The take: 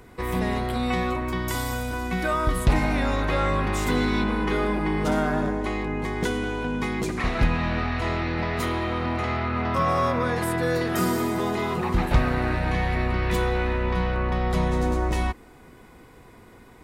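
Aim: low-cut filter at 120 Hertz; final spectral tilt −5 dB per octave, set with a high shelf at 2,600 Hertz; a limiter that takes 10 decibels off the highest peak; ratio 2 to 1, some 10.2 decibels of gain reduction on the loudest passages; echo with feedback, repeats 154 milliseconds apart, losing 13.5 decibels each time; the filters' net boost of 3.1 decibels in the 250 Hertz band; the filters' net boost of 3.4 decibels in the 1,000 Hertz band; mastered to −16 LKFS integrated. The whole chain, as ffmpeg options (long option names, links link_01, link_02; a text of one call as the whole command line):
ffmpeg -i in.wav -af "highpass=120,equalizer=frequency=250:width_type=o:gain=4,equalizer=frequency=1000:width_type=o:gain=3,highshelf=frequency=2600:gain=6.5,acompressor=threshold=-36dB:ratio=2,alimiter=level_in=1.5dB:limit=-24dB:level=0:latency=1,volume=-1.5dB,aecho=1:1:154|308:0.211|0.0444,volume=18dB" out.wav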